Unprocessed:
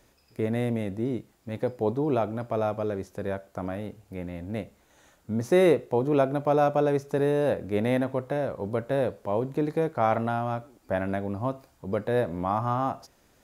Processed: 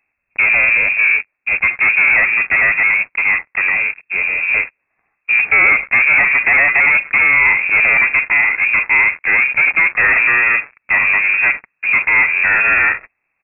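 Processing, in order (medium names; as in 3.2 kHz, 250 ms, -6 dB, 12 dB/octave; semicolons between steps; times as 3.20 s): waveshaping leveller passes 5; harmony voices -4 st -9 dB; frequency inversion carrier 2.6 kHz; trim +1 dB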